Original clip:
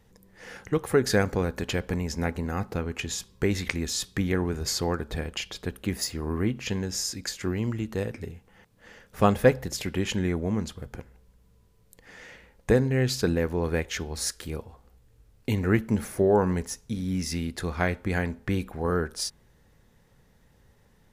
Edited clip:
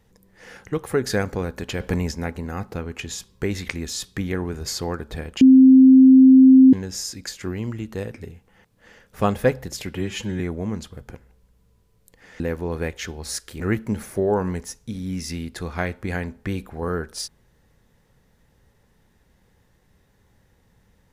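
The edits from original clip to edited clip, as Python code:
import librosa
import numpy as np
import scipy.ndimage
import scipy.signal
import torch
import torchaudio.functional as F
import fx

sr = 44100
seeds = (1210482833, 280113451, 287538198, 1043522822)

y = fx.edit(x, sr, fx.clip_gain(start_s=1.8, length_s=0.31, db=5.5),
    fx.bleep(start_s=5.41, length_s=1.32, hz=262.0, db=-6.5),
    fx.stretch_span(start_s=9.95, length_s=0.3, factor=1.5),
    fx.cut(start_s=12.25, length_s=1.07),
    fx.cut(start_s=14.52, length_s=1.1), tone=tone)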